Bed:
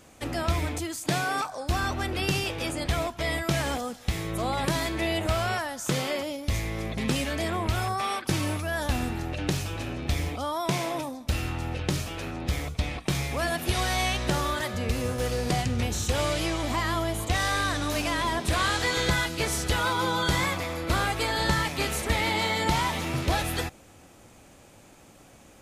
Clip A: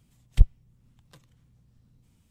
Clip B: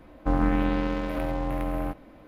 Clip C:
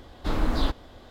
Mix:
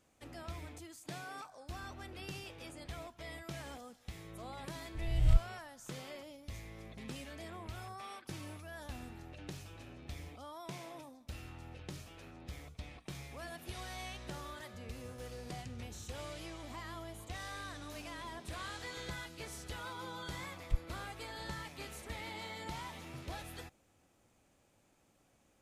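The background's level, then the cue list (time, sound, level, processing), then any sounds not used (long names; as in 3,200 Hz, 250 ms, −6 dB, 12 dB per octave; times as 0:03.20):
bed −18.5 dB
0:04.95: mix in A −13 dB + peak hold with a rise ahead of every peak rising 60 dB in 1.08 s
0:20.33: mix in A −16 dB
not used: B, C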